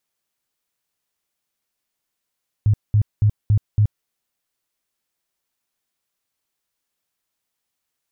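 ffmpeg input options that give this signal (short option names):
-f lavfi -i "aevalsrc='0.266*sin(2*PI*105*mod(t,0.28))*lt(mod(t,0.28),8/105)':d=1.4:s=44100"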